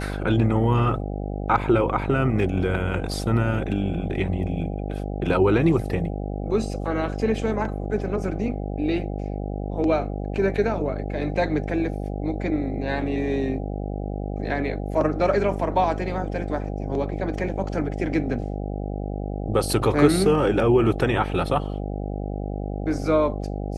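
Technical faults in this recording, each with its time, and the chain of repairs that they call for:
buzz 50 Hz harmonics 16 -29 dBFS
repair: de-hum 50 Hz, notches 16

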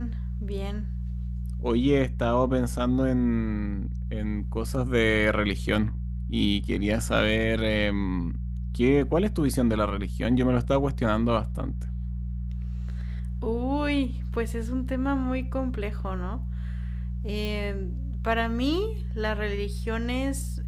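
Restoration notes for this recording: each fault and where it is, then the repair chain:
hum 60 Hz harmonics 3 -31 dBFS
17.45 pop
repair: de-click; de-hum 60 Hz, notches 3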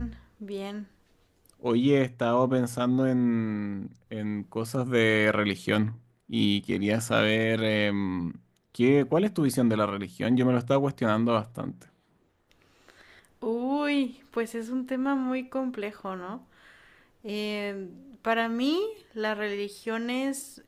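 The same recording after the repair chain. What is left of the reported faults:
none

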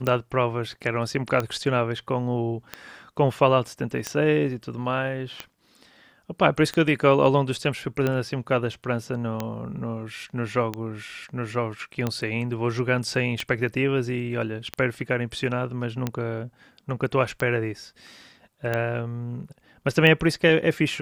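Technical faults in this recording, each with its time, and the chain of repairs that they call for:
tick 45 rpm -12 dBFS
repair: de-click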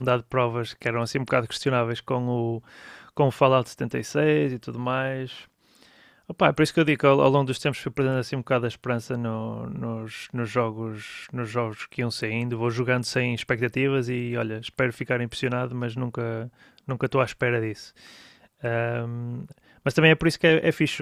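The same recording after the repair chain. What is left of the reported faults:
none

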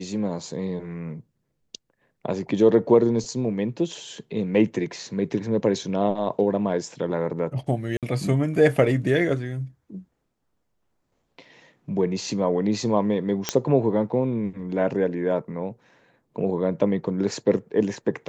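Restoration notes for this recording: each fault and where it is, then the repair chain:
7.97–8.03 gap 57 ms
13.49 pop -6 dBFS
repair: de-click; interpolate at 7.97, 57 ms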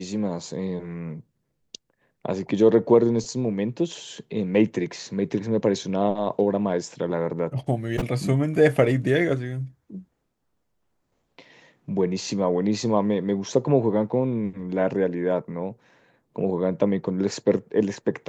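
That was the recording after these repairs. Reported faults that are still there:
none

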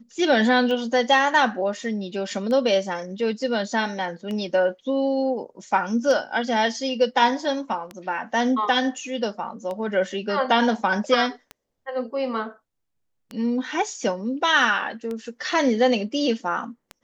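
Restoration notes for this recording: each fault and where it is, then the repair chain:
tick 33 1/3 rpm -19 dBFS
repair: de-click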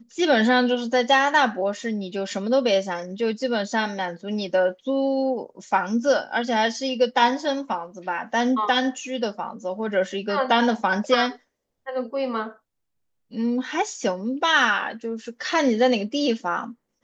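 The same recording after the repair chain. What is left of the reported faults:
none

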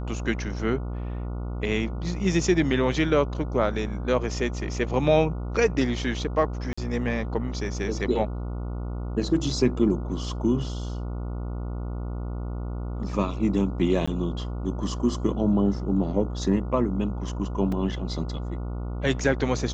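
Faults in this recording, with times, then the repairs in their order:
buzz 60 Hz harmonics 24 -31 dBFS
6.73–6.78 gap 45 ms
14.06–14.07 gap 15 ms
17.72 gap 3.5 ms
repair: de-hum 60 Hz, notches 24; interpolate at 6.73, 45 ms; interpolate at 14.06, 15 ms; interpolate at 17.72, 3.5 ms

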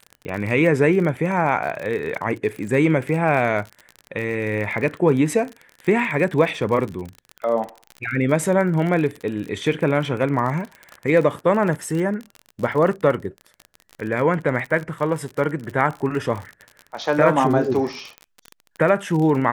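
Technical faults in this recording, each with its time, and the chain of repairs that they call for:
crackle 38/s -27 dBFS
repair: de-click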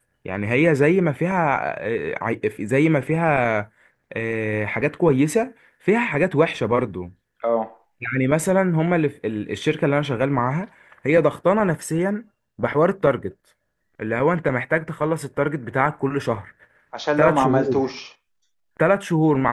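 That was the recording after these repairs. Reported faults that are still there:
none

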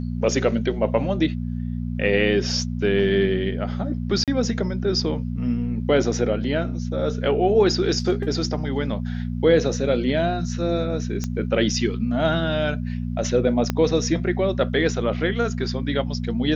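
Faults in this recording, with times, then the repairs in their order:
hum 60 Hz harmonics 4 -27 dBFS
4.24–4.28 gap 37 ms
11.24 pop -14 dBFS
13.7 pop -8 dBFS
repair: de-click; de-hum 60 Hz, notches 4; interpolate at 4.24, 37 ms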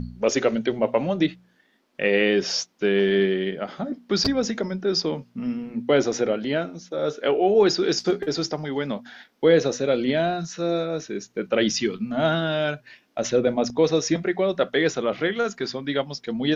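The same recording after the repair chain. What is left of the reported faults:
13.7 pop

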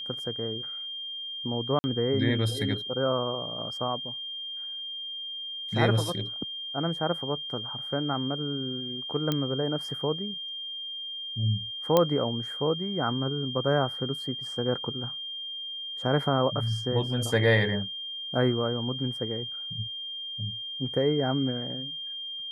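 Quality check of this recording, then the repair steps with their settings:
tone 3200 Hz -34 dBFS
1.79–1.84 gap 50 ms
9.32 pop -13 dBFS
11.97 pop -8 dBFS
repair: de-click; notch 3200 Hz, Q 30; interpolate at 1.79, 50 ms

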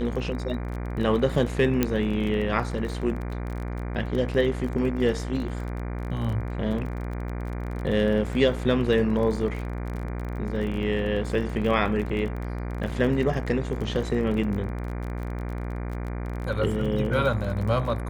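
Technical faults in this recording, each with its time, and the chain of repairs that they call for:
buzz 60 Hz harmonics 40 -31 dBFS
crackle 29/s -32 dBFS
1.83 pop -8 dBFS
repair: de-click; de-hum 60 Hz, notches 40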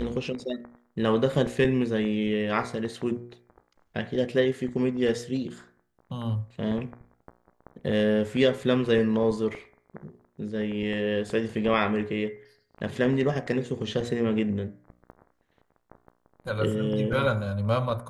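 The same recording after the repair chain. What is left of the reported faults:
none

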